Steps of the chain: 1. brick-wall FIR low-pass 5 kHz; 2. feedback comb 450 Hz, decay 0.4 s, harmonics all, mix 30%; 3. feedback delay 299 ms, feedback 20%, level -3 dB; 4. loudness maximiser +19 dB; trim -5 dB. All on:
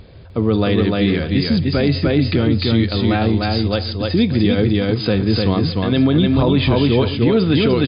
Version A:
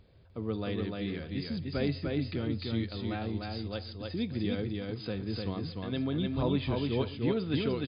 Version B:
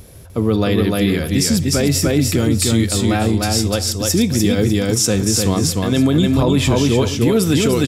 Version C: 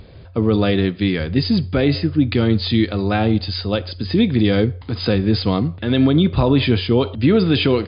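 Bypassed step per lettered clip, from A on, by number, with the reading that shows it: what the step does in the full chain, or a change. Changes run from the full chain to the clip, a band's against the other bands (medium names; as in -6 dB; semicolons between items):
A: 4, crest factor change +7.0 dB; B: 1, 4 kHz band +2.0 dB; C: 3, loudness change -1.5 LU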